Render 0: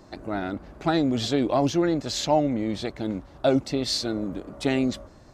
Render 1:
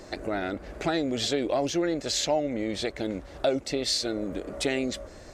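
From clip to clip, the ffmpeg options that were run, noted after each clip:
ffmpeg -i in.wav -af "equalizer=frequency=125:width_type=o:width=1:gain=-7,equalizer=frequency=250:width_type=o:width=1:gain=-4,equalizer=frequency=500:width_type=o:width=1:gain=5,equalizer=frequency=1000:width_type=o:width=1:gain=-6,equalizer=frequency=2000:width_type=o:width=1:gain=5,equalizer=frequency=8000:width_type=o:width=1:gain=5,acompressor=threshold=-37dB:ratio=2,volume=6dB" out.wav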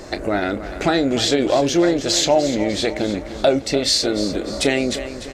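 ffmpeg -i in.wav -filter_complex "[0:a]asplit=2[link_01][link_02];[link_02]adelay=29,volume=-12.5dB[link_03];[link_01][link_03]amix=inputs=2:normalize=0,aecho=1:1:299|598|897|1196|1495:0.237|0.119|0.0593|0.0296|0.0148,volume=9dB" out.wav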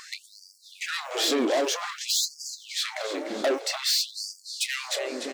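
ffmpeg -i in.wav -filter_complex "[0:a]acrossover=split=130[link_01][link_02];[link_01]acrusher=samples=16:mix=1:aa=0.000001[link_03];[link_02]asoftclip=type=tanh:threshold=-20.5dB[link_04];[link_03][link_04]amix=inputs=2:normalize=0,afftfilt=real='re*gte(b*sr/1024,210*pow(4600/210,0.5+0.5*sin(2*PI*0.52*pts/sr)))':imag='im*gte(b*sr/1024,210*pow(4600/210,0.5+0.5*sin(2*PI*0.52*pts/sr)))':win_size=1024:overlap=0.75" out.wav

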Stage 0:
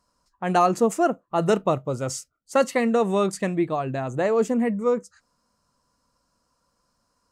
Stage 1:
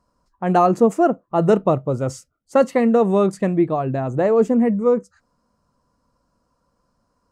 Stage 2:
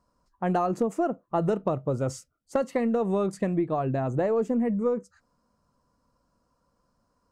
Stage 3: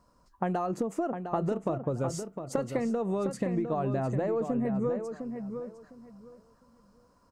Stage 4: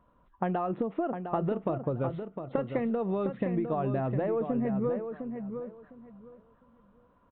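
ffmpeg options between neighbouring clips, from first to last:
ffmpeg -i in.wav -af "tiltshelf=frequency=1500:gain=6.5" out.wav
ffmpeg -i in.wav -af "acompressor=threshold=-18dB:ratio=10,aeval=exprs='0.266*(cos(1*acos(clip(val(0)/0.266,-1,1)))-cos(1*PI/2))+0.00841*(cos(2*acos(clip(val(0)/0.266,-1,1)))-cos(2*PI/2))':channel_layout=same,volume=-3.5dB" out.wav
ffmpeg -i in.wav -filter_complex "[0:a]acompressor=threshold=-33dB:ratio=10,asplit=2[link_01][link_02];[link_02]adelay=706,lowpass=frequency=3800:poles=1,volume=-7.5dB,asplit=2[link_03][link_04];[link_04]adelay=706,lowpass=frequency=3800:poles=1,volume=0.21,asplit=2[link_05][link_06];[link_06]adelay=706,lowpass=frequency=3800:poles=1,volume=0.21[link_07];[link_01][link_03][link_05][link_07]amix=inputs=4:normalize=0,volume=6dB" out.wav
ffmpeg -i in.wav -af "aresample=8000,aresample=44100" out.wav

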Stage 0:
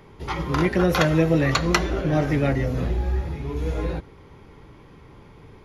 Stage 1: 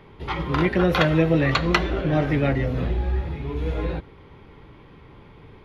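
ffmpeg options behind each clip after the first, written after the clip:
ffmpeg -i in.wav -af "highshelf=frequency=4700:width_type=q:width=1.5:gain=-9" out.wav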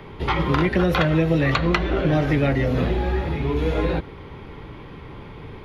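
ffmpeg -i in.wav -filter_complex "[0:a]acrossover=split=160|4100[link_01][link_02][link_03];[link_01]acompressor=threshold=-33dB:ratio=4[link_04];[link_02]acompressor=threshold=-28dB:ratio=4[link_05];[link_03]acompressor=threshold=-52dB:ratio=4[link_06];[link_04][link_05][link_06]amix=inputs=3:normalize=0,volume=8.5dB" out.wav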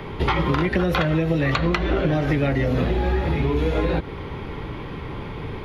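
ffmpeg -i in.wav -af "acompressor=threshold=-24dB:ratio=6,volume=6.5dB" out.wav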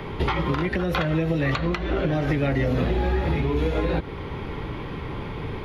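ffmpeg -i in.wav -af "alimiter=limit=-13dB:level=0:latency=1:release=446" out.wav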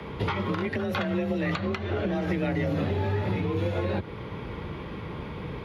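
ffmpeg -i in.wav -af "afreqshift=34,volume=-4.5dB" out.wav

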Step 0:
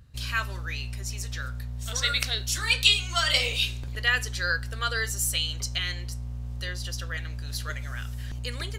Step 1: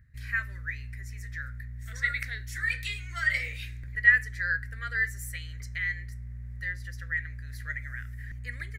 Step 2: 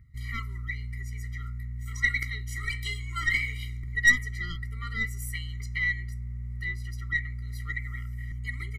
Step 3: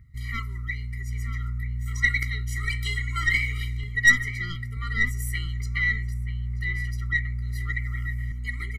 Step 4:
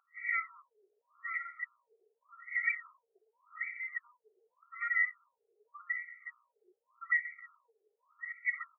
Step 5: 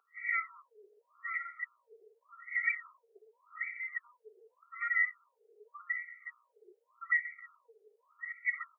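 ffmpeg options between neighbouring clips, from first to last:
ffmpeg -i in.wav -af "firequalizer=gain_entry='entry(110,0);entry(350,-11);entry(610,-11);entry(860,-20);entry(1900,13);entry(2800,-15);entry(14000,-6)':delay=0.05:min_phase=1,volume=-5dB" out.wav
ffmpeg -i in.wav -af "aeval=exprs='(tanh(7.94*val(0)+0.4)-tanh(0.4))/7.94':channel_layout=same,afftfilt=real='re*eq(mod(floor(b*sr/1024/470),2),0)':imag='im*eq(mod(floor(b*sr/1024/470),2),0)':win_size=1024:overlap=0.75,volume=5.5dB" out.wav
ffmpeg -i in.wav -filter_complex "[0:a]asplit=2[link_01][link_02];[link_02]adelay=932.9,volume=-7dB,highshelf=frequency=4000:gain=-21[link_03];[link_01][link_03]amix=inputs=2:normalize=0,volume=3dB" out.wav
ffmpeg -i in.wav -filter_complex "[0:a]acrossover=split=250|1300[link_01][link_02][link_03];[link_01]acompressor=threshold=-38dB:ratio=4[link_04];[link_02]acompressor=threshold=-53dB:ratio=4[link_05];[link_03]acompressor=threshold=-35dB:ratio=4[link_06];[link_04][link_05][link_06]amix=inputs=3:normalize=0,afftfilt=real='re*between(b*sr/1024,540*pow(1900/540,0.5+0.5*sin(2*PI*0.86*pts/sr))/1.41,540*pow(1900/540,0.5+0.5*sin(2*PI*0.86*pts/sr))*1.41)':imag='im*between(b*sr/1024,540*pow(1900/540,0.5+0.5*sin(2*PI*0.86*pts/sr))/1.41,540*pow(1900/540,0.5+0.5*sin(2*PI*0.86*pts/sr))*1.41)':win_size=1024:overlap=0.75,volume=5.5dB" out.wav
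ffmpeg -i in.wav -af "highpass=frequency=430:width_type=q:width=4.4" out.wav

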